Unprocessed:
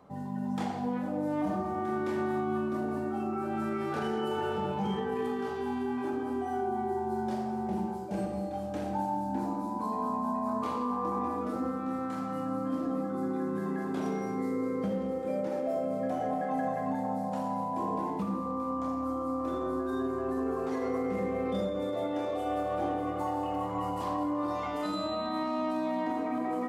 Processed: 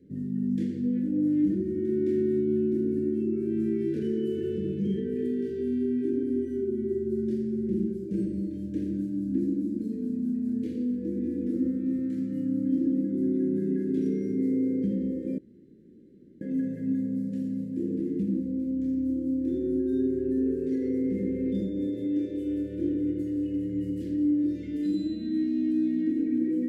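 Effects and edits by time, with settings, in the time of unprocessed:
15.38–16.41 room tone
whole clip: elliptic band-stop 530–1700 Hz, stop band 40 dB; resonant low shelf 470 Hz +11.5 dB, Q 3; gain -8.5 dB

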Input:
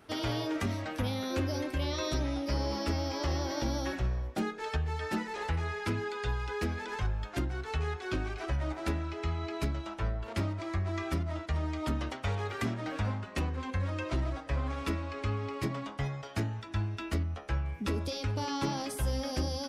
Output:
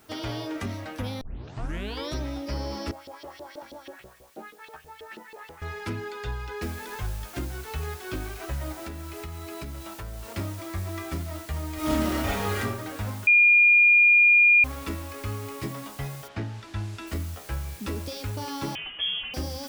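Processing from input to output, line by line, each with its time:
1.21 tape start 0.91 s
2.91–5.62 LFO band-pass saw up 6.2 Hz 380–3700 Hz
6.62 noise floor step -61 dB -47 dB
8.84–10.36 compressor, threshold -33 dBFS
11.74–12.59 reverb throw, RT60 0.82 s, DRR -8 dB
13.27–14.64 bleep 2420 Hz -13.5 dBFS
16.27–17.06 LPF 3200 Hz -> 8200 Hz
18.75–19.34 inverted band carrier 3300 Hz

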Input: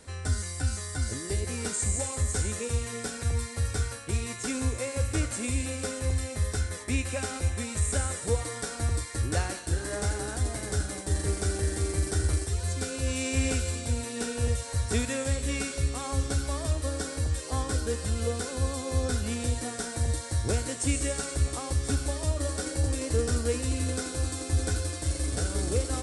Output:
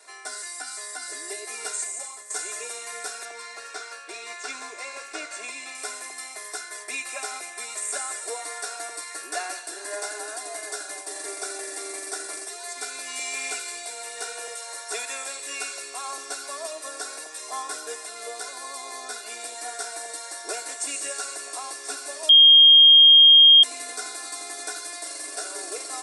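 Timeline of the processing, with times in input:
1.66–2.3 fade out, to -11.5 dB
3.25–5.75 LPF 6000 Hz
13.19–16.18 steep high-pass 270 Hz
18.03–19.55 AM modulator 120 Hz, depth 20%
22.29–23.63 bleep 3230 Hz -6 dBFS
whole clip: HPF 510 Hz 24 dB/oct; notch 3100 Hz, Q 11; comb 2.9 ms, depth 92%

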